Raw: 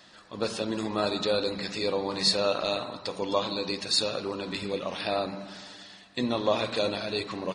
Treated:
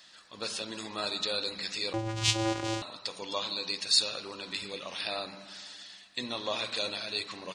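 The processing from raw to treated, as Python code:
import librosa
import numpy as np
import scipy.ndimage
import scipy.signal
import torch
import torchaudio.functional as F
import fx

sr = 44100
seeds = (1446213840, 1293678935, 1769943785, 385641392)

y = fx.tilt_shelf(x, sr, db=-7.5, hz=1300.0)
y = fx.vocoder(y, sr, bands=4, carrier='square', carrier_hz=111.0, at=(1.93, 2.82))
y = y * librosa.db_to_amplitude(-5.0)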